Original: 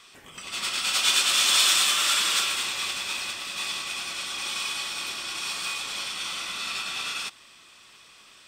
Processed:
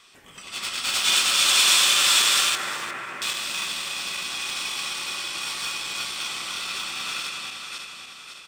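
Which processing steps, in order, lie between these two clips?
backward echo that repeats 278 ms, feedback 67%, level -2.5 dB; in parallel at -10 dB: small samples zeroed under -21.5 dBFS; 2.55–3.22 s: on the sum: elliptic band-pass 110–2000 Hz; feedback delay 357 ms, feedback 20%, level -14 dB; trim -2 dB

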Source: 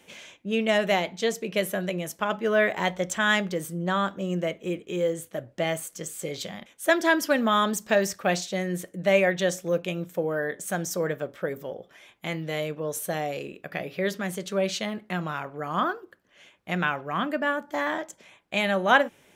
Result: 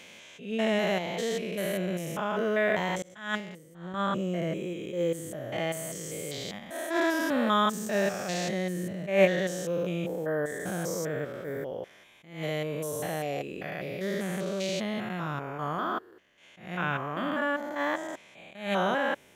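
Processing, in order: spectrogram pixelated in time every 200 ms; in parallel at -1 dB: level held to a coarse grid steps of 22 dB; 3.02–3.94 s: on the sum: expander -20 dBFS; attacks held to a fixed rise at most 120 dB/s; trim -1 dB

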